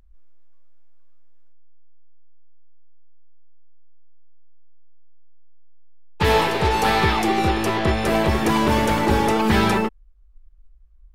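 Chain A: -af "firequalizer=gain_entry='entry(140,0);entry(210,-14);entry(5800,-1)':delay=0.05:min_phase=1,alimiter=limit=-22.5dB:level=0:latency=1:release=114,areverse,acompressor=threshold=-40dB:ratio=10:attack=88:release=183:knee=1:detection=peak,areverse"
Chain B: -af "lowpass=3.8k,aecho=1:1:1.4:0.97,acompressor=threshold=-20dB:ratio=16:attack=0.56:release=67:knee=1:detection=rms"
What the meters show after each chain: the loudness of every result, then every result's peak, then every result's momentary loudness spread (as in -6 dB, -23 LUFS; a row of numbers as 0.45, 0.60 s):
-41.0, -27.0 LUFS; -26.5, -16.5 dBFS; 18, 3 LU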